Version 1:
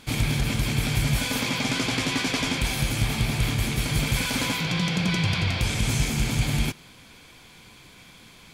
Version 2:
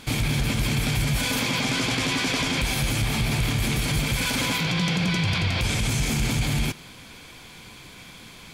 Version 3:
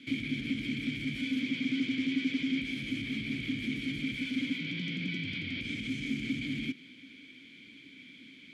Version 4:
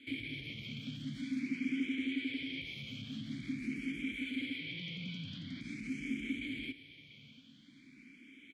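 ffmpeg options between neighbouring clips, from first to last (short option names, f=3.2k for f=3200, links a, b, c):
-af "alimiter=limit=-20.5dB:level=0:latency=1:release=37,volume=5dB"
-filter_complex "[0:a]acrossover=split=290[a][b];[b]acompressor=threshold=-29dB:ratio=3[c];[a][c]amix=inputs=2:normalize=0,asplit=3[d][e][f];[d]bandpass=f=270:t=q:w=8,volume=0dB[g];[e]bandpass=f=2.29k:t=q:w=8,volume=-6dB[h];[f]bandpass=f=3.01k:t=q:w=8,volume=-9dB[i];[g][h][i]amix=inputs=3:normalize=0,volume=3.5dB"
-filter_complex "[0:a]aecho=1:1:689|1378|2067|2756:0.15|0.0658|0.029|0.0127,asplit=2[a][b];[b]afreqshift=0.46[c];[a][c]amix=inputs=2:normalize=1,volume=-3.5dB"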